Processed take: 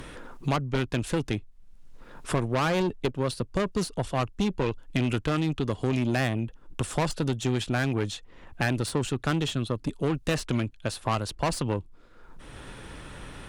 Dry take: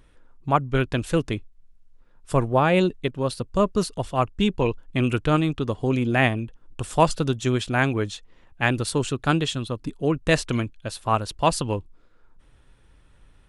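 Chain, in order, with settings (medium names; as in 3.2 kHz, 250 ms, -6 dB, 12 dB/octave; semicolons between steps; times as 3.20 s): 2.58–3.13 s: peaking EQ 1.6 kHz -> 460 Hz +7 dB 1.6 oct; valve stage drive 21 dB, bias 0.4; three bands compressed up and down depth 70%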